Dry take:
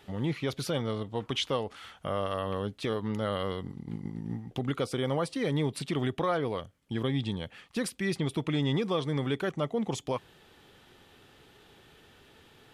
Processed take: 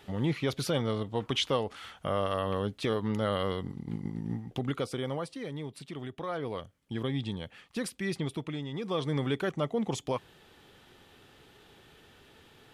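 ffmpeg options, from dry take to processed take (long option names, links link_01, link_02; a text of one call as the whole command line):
ffmpeg -i in.wav -af "volume=20.5dB,afade=type=out:start_time=4.25:duration=1.27:silence=0.266073,afade=type=in:start_time=6.16:duration=0.43:silence=0.421697,afade=type=out:start_time=8.22:duration=0.49:silence=0.354813,afade=type=in:start_time=8.71:duration=0.33:silence=0.266073" out.wav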